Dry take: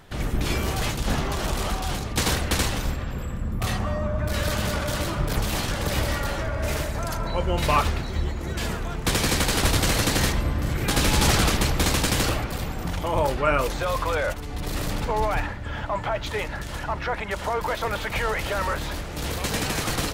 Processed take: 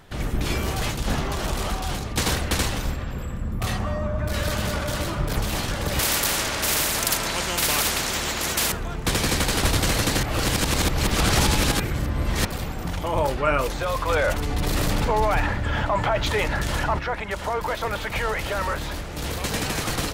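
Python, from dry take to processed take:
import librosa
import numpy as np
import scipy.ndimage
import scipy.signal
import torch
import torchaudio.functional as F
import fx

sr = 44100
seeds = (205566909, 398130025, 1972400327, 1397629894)

y = fx.spectral_comp(x, sr, ratio=4.0, at=(5.99, 8.72))
y = fx.env_flatten(y, sr, amount_pct=50, at=(14.08, 16.98), fade=0.02)
y = fx.edit(y, sr, fx.reverse_span(start_s=10.23, length_s=2.22), tone=tone)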